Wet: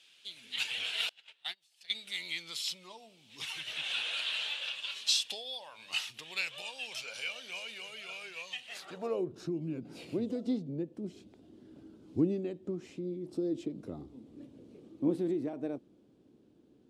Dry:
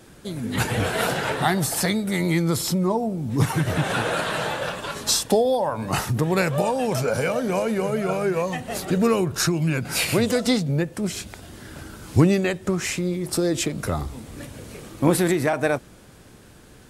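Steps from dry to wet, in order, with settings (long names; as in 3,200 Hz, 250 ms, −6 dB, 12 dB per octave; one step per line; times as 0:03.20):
high shelf with overshoot 2,400 Hz +9.5 dB, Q 1.5
band-pass filter sweep 2,700 Hz → 300 Hz, 0:08.64–0:09.33
0:01.09–0:01.95: noise gate −24 dBFS, range −32 dB
level −7.5 dB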